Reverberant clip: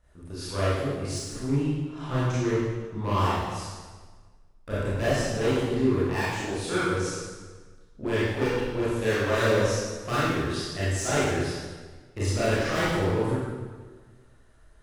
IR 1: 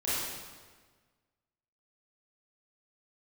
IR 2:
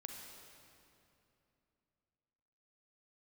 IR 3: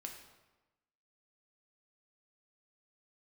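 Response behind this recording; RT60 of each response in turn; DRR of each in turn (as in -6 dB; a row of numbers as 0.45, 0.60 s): 1; 1.5, 2.9, 1.1 s; -11.5, 1.5, 1.5 dB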